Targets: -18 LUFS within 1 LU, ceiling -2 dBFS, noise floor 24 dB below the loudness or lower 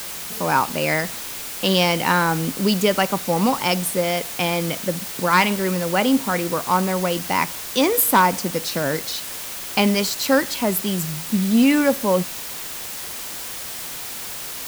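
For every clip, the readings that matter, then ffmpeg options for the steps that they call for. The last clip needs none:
noise floor -32 dBFS; noise floor target -45 dBFS; loudness -21.0 LUFS; peak level -4.0 dBFS; loudness target -18.0 LUFS
-> -af "afftdn=nr=13:nf=-32"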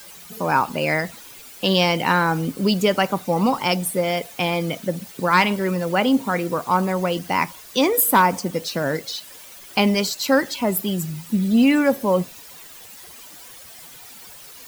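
noise floor -42 dBFS; noise floor target -45 dBFS
-> -af "afftdn=nr=6:nf=-42"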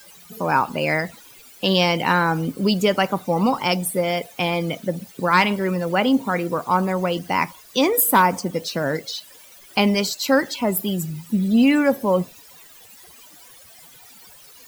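noise floor -47 dBFS; loudness -20.5 LUFS; peak level -5.0 dBFS; loudness target -18.0 LUFS
-> -af "volume=1.33"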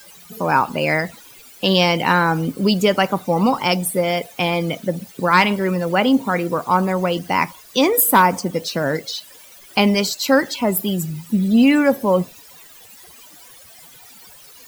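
loudness -18.5 LUFS; peak level -2.5 dBFS; noise floor -44 dBFS

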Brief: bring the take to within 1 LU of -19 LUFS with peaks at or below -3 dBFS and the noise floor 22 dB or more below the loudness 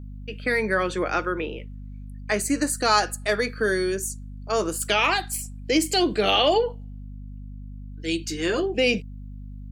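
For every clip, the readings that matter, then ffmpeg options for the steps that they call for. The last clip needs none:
hum 50 Hz; highest harmonic 250 Hz; hum level -35 dBFS; loudness -24.0 LUFS; peak level -6.5 dBFS; loudness target -19.0 LUFS
-> -af "bandreject=f=50:t=h:w=6,bandreject=f=100:t=h:w=6,bandreject=f=150:t=h:w=6,bandreject=f=200:t=h:w=6,bandreject=f=250:t=h:w=6"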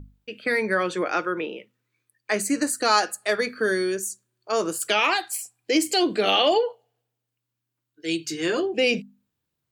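hum not found; loudness -24.0 LUFS; peak level -6.0 dBFS; loudness target -19.0 LUFS
-> -af "volume=1.78,alimiter=limit=0.708:level=0:latency=1"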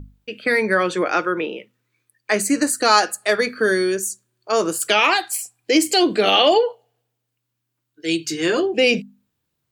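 loudness -19.0 LUFS; peak level -3.0 dBFS; noise floor -78 dBFS

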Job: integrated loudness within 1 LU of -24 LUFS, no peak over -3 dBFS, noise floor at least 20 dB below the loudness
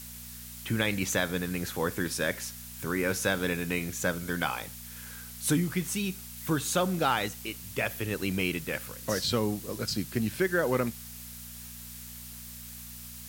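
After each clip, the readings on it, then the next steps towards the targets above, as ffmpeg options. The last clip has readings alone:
hum 60 Hz; highest harmonic 240 Hz; hum level -47 dBFS; noise floor -44 dBFS; noise floor target -51 dBFS; loudness -30.5 LUFS; peak level -12.0 dBFS; loudness target -24.0 LUFS
-> -af "bandreject=f=60:t=h:w=4,bandreject=f=120:t=h:w=4,bandreject=f=180:t=h:w=4,bandreject=f=240:t=h:w=4"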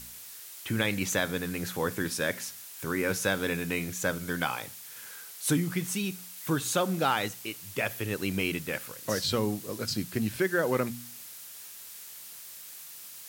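hum not found; noise floor -46 dBFS; noise floor target -51 dBFS
-> -af "afftdn=nr=6:nf=-46"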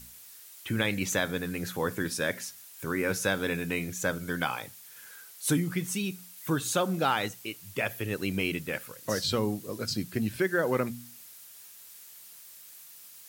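noise floor -50 dBFS; noise floor target -51 dBFS
-> -af "afftdn=nr=6:nf=-50"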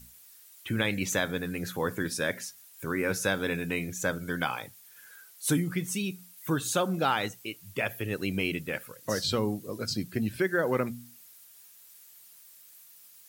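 noise floor -54 dBFS; loudness -30.5 LUFS; peak level -12.0 dBFS; loudness target -24.0 LUFS
-> -af "volume=2.11"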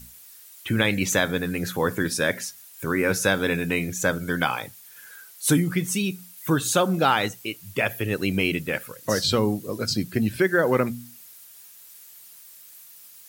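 loudness -24.0 LUFS; peak level -5.5 dBFS; noise floor -48 dBFS

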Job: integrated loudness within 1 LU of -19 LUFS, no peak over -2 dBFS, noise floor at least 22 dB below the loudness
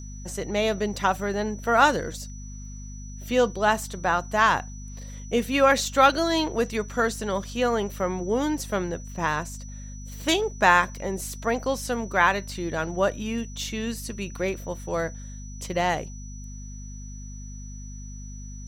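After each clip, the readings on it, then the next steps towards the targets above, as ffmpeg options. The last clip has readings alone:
hum 50 Hz; highest harmonic 250 Hz; hum level -36 dBFS; steady tone 5.9 kHz; tone level -46 dBFS; loudness -25.0 LUFS; peak level -4.0 dBFS; loudness target -19.0 LUFS
-> -af "bandreject=f=50:t=h:w=4,bandreject=f=100:t=h:w=4,bandreject=f=150:t=h:w=4,bandreject=f=200:t=h:w=4,bandreject=f=250:t=h:w=4"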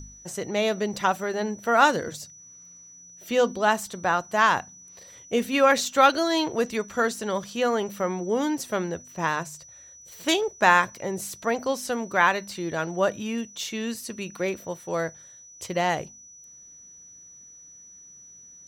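hum not found; steady tone 5.9 kHz; tone level -46 dBFS
-> -af "bandreject=f=5900:w=30"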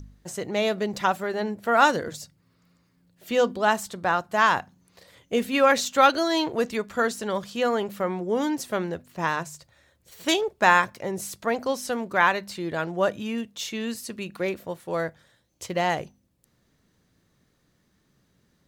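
steady tone not found; loudness -25.0 LUFS; peak level -4.5 dBFS; loudness target -19.0 LUFS
-> -af "volume=2,alimiter=limit=0.794:level=0:latency=1"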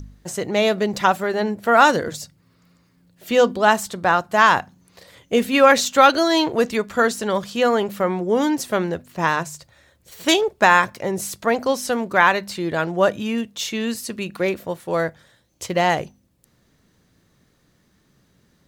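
loudness -19.5 LUFS; peak level -2.0 dBFS; noise floor -62 dBFS

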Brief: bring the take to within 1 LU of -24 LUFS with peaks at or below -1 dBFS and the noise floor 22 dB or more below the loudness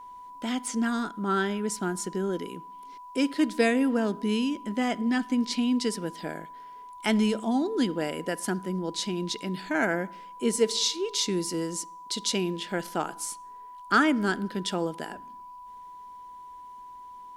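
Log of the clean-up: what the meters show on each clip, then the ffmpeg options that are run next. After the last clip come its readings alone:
steady tone 990 Hz; tone level -42 dBFS; loudness -28.0 LUFS; peak level -10.5 dBFS; loudness target -24.0 LUFS
-> -af "bandreject=f=990:w=30"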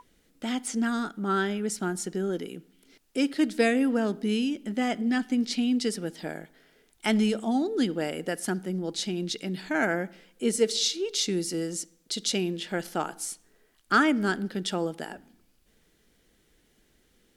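steady tone not found; loudness -28.0 LUFS; peak level -10.5 dBFS; loudness target -24.0 LUFS
-> -af "volume=1.58"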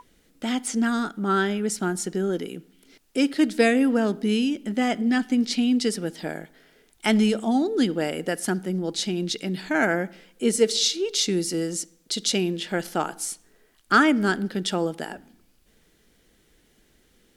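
loudness -24.0 LUFS; peak level -6.5 dBFS; noise floor -63 dBFS

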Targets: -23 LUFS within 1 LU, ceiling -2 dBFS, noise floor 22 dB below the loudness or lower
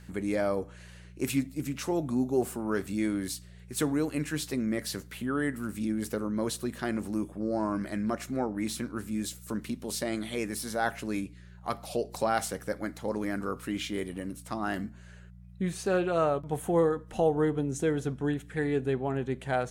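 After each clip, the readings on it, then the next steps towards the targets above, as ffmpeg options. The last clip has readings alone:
hum 60 Hz; highest harmonic 180 Hz; hum level -47 dBFS; loudness -31.5 LUFS; peak level -14.0 dBFS; loudness target -23.0 LUFS
-> -af "bandreject=f=60:t=h:w=4,bandreject=f=120:t=h:w=4,bandreject=f=180:t=h:w=4"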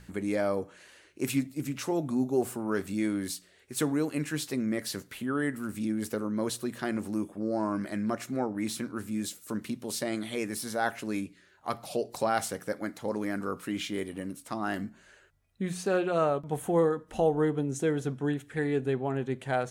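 hum not found; loudness -31.5 LUFS; peak level -14.0 dBFS; loudness target -23.0 LUFS
-> -af "volume=2.66"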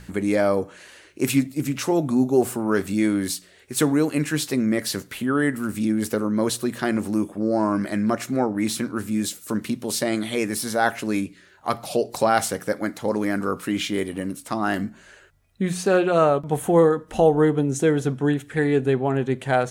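loudness -23.0 LUFS; peak level -5.5 dBFS; noise floor -52 dBFS

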